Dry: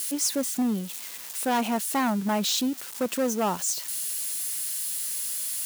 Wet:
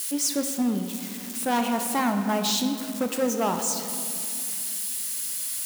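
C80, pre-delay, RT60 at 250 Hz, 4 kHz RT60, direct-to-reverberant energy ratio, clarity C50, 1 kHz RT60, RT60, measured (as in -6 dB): 8.0 dB, 17 ms, 3.4 s, 1.3 s, 5.0 dB, 6.5 dB, 2.5 s, 2.5 s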